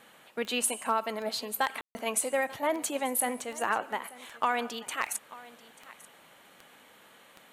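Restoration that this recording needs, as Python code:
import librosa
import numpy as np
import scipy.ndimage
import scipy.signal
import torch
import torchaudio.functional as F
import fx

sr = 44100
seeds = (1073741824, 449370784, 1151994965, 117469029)

y = fx.fix_declip(x, sr, threshold_db=-16.0)
y = fx.fix_declick_ar(y, sr, threshold=10.0)
y = fx.fix_ambience(y, sr, seeds[0], print_start_s=6.1, print_end_s=6.6, start_s=1.81, end_s=1.95)
y = fx.fix_echo_inverse(y, sr, delay_ms=888, level_db=-19.5)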